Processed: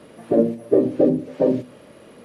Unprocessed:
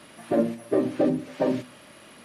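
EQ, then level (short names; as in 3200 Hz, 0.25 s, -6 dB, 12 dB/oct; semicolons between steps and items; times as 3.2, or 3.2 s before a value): tilt shelf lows +5.5 dB, about 860 Hz; dynamic EQ 1300 Hz, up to -4 dB, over -37 dBFS, Q 0.72; bell 470 Hz +10.5 dB 0.43 oct; 0.0 dB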